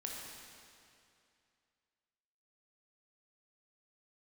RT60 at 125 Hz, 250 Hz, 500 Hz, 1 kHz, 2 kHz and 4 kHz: 2.6, 2.5, 2.5, 2.5, 2.5, 2.3 s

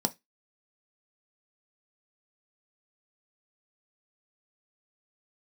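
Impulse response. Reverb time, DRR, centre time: 0.15 s, 6.5 dB, 4 ms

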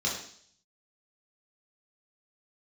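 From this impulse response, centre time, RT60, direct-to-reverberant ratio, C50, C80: 38 ms, 0.55 s, -4.5 dB, 4.5 dB, 8.0 dB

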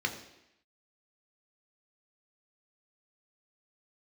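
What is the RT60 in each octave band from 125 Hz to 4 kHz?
0.70, 0.85, 0.80, 0.85, 0.95, 0.85 s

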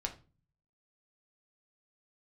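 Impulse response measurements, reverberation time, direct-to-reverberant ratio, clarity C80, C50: 0.35 s, 2.5 dB, 19.0 dB, 13.0 dB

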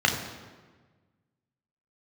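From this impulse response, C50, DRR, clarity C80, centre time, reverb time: 6.5 dB, 1.0 dB, 8.0 dB, 34 ms, 1.4 s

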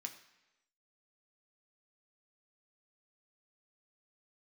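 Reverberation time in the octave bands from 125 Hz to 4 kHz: 0.85, 0.95, 1.0, 1.0, 1.0, 0.95 s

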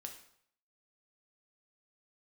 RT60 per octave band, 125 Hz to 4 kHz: 0.70, 0.60, 0.65, 0.65, 0.60, 0.55 s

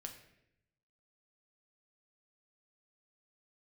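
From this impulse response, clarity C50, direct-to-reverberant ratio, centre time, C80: 9.0 dB, 3.0 dB, 18 ms, 11.0 dB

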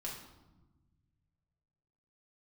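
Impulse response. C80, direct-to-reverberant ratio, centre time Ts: 7.0 dB, -3.5 dB, 42 ms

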